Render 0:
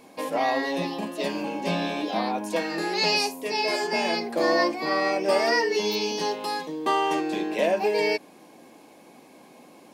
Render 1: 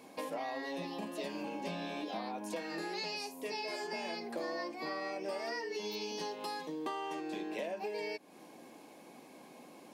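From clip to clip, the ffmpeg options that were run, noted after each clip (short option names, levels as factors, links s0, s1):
-af "highpass=98,acompressor=threshold=0.0224:ratio=6,volume=0.631"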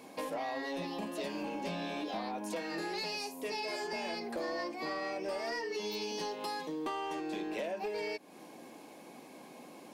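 -af "aeval=exprs='0.0531*(cos(1*acos(clip(val(0)/0.0531,-1,1)))-cos(1*PI/2))+0.00422*(cos(5*acos(clip(val(0)/0.0531,-1,1)))-cos(5*PI/2))':c=same"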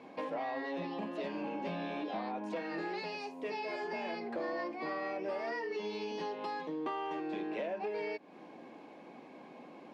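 -af "highpass=100,lowpass=2700"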